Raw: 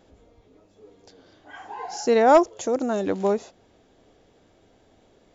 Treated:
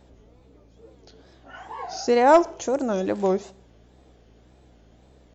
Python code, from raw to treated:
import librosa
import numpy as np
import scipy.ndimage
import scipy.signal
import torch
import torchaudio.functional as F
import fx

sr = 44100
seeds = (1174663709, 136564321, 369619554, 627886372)

y = fx.add_hum(x, sr, base_hz=60, snr_db=30)
y = fx.wow_flutter(y, sr, seeds[0], rate_hz=2.1, depth_cents=150.0)
y = fx.rev_schroeder(y, sr, rt60_s=0.59, comb_ms=28, drr_db=19.0)